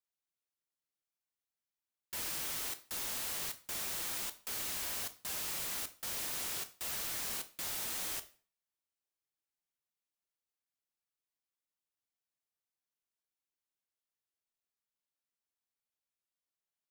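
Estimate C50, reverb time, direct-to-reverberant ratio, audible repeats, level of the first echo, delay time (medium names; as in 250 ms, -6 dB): 15.5 dB, 0.40 s, 9.5 dB, no echo, no echo, no echo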